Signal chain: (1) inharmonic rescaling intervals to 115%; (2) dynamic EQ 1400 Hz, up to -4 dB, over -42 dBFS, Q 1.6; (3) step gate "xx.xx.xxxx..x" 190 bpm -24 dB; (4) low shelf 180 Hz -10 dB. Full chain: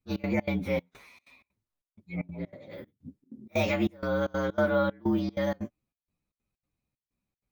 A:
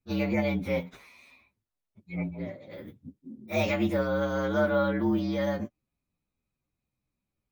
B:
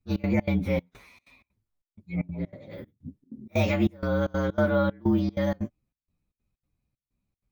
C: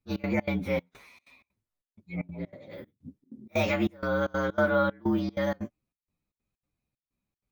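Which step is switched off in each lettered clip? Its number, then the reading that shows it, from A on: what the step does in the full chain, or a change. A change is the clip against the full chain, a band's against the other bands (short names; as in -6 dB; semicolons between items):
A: 3, momentary loudness spread change +2 LU; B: 4, 125 Hz band +6.5 dB; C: 2, 2 kHz band +2.5 dB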